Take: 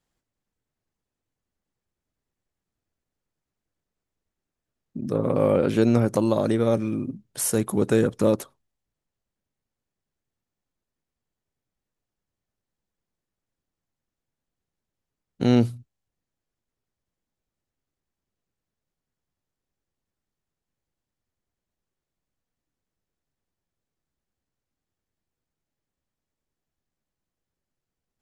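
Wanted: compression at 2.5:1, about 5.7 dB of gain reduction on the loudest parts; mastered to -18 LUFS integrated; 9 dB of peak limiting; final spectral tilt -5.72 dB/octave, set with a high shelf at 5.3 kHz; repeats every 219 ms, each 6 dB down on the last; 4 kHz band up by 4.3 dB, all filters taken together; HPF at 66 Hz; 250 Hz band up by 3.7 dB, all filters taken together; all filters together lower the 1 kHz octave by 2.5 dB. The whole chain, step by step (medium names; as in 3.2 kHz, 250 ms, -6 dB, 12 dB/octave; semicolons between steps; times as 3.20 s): high-pass 66 Hz; peaking EQ 250 Hz +4.5 dB; peaking EQ 1 kHz -4 dB; peaking EQ 4 kHz +4 dB; treble shelf 5.3 kHz +3.5 dB; compression 2.5:1, threshold -20 dBFS; peak limiter -17.5 dBFS; feedback delay 219 ms, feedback 50%, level -6 dB; trim +9.5 dB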